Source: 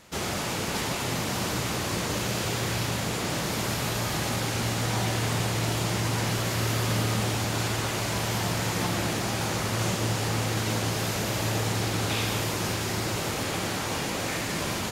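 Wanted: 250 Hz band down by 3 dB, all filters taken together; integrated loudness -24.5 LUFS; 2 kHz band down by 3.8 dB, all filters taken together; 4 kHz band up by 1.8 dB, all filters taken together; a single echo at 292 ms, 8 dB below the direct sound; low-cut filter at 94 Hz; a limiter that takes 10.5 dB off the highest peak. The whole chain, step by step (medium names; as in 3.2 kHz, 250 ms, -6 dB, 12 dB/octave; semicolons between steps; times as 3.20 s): high-pass 94 Hz; peaking EQ 250 Hz -4 dB; peaking EQ 2 kHz -6 dB; peaking EQ 4 kHz +4 dB; peak limiter -26.5 dBFS; delay 292 ms -8 dB; trim +9.5 dB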